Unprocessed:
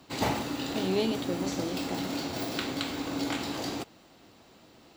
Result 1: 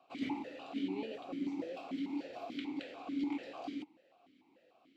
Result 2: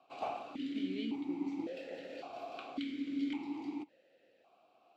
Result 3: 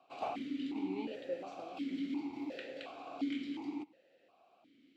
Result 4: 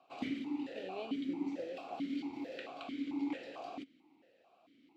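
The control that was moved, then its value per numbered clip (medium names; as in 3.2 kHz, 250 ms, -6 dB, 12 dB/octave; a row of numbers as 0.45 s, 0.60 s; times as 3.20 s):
stepped vowel filter, rate: 6.8 Hz, 1.8 Hz, 2.8 Hz, 4.5 Hz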